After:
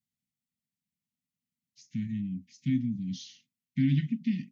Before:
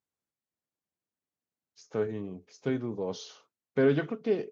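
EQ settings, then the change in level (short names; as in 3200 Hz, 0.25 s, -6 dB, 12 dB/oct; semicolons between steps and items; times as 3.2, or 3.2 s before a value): Chebyshev band-stop 260–1900 Hz, order 5; bell 180 Hz +9 dB 1.6 oct; 0.0 dB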